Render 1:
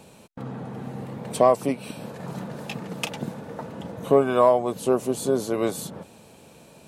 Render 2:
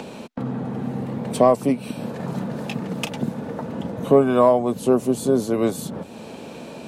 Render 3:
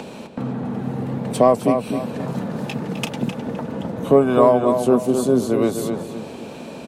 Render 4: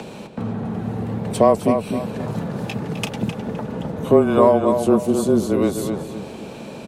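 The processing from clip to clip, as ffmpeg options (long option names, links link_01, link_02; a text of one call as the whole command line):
ffmpeg -i in.wav -filter_complex "[0:a]lowshelf=frequency=440:gain=5.5,acrossover=split=200|5700[link_01][link_02][link_03];[link_02]acompressor=mode=upward:threshold=-26dB:ratio=2.5[link_04];[link_01][link_04][link_03]amix=inputs=3:normalize=0,equalizer=frequency=240:width_type=o:width=0.29:gain=5" out.wav
ffmpeg -i in.wav -filter_complex "[0:a]asplit=2[link_01][link_02];[link_02]adelay=258,lowpass=frequency=3600:poles=1,volume=-6.5dB,asplit=2[link_03][link_04];[link_04]adelay=258,lowpass=frequency=3600:poles=1,volume=0.36,asplit=2[link_05][link_06];[link_06]adelay=258,lowpass=frequency=3600:poles=1,volume=0.36,asplit=2[link_07][link_08];[link_08]adelay=258,lowpass=frequency=3600:poles=1,volume=0.36[link_09];[link_01][link_03][link_05][link_07][link_09]amix=inputs=5:normalize=0,volume=1dB" out.wav
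ffmpeg -i in.wav -af "afreqshift=-21" out.wav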